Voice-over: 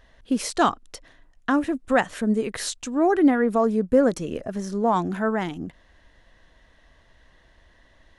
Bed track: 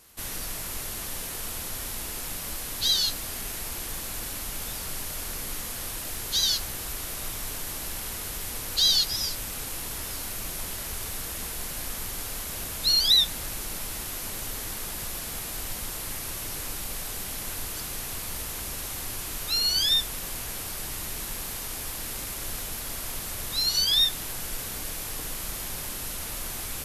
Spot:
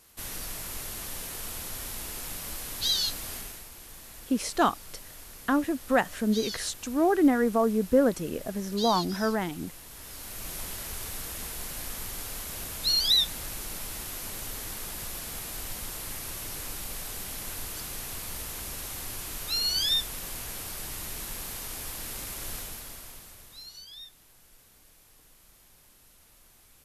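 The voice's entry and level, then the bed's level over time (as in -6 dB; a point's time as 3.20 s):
4.00 s, -3.5 dB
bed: 3.35 s -3 dB
3.69 s -12.5 dB
9.86 s -12.5 dB
10.53 s -3 dB
22.56 s -3 dB
23.90 s -24 dB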